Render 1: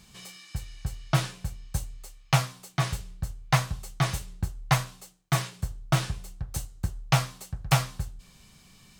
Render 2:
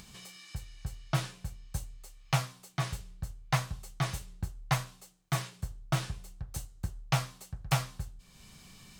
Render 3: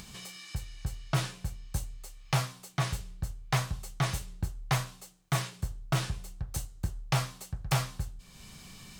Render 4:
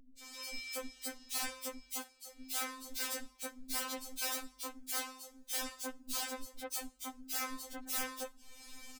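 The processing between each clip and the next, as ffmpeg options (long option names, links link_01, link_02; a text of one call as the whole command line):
ffmpeg -i in.wav -af "acompressor=mode=upward:threshold=-38dB:ratio=2.5,volume=-6dB" out.wav
ffmpeg -i in.wav -af "asoftclip=type=tanh:threshold=-24.5dB,volume=4.5dB" out.wav
ffmpeg -i in.wav -filter_complex "[0:a]aeval=exprs='(mod(26.6*val(0)+1,2)-1)/26.6':channel_layout=same,acrossover=split=250|2800[link_01][link_02][link_03];[link_03]adelay=190[link_04];[link_02]adelay=230[link_05];[link_01][link_05][link_04]amix=inputs=3:normalize=0,afftfilt=real='re*3.46*eq(mod(b,12),0)':imag='im*3.46*eq(mod(b,12),0)':win_size=2048:overlap=0.75,volume=1.5dB" out.wav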